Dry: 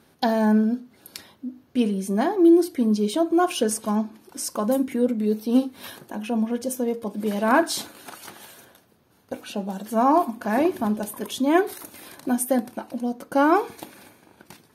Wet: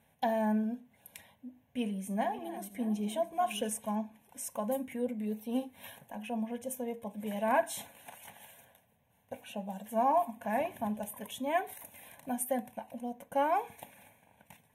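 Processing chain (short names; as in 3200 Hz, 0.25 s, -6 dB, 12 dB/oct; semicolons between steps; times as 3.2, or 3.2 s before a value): 1.47–3.69 regenerating reverse delay 0.306 s, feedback 54%, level -13.5 dB; fixed phaser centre 1300 Hz, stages 6; gain -6.5 dB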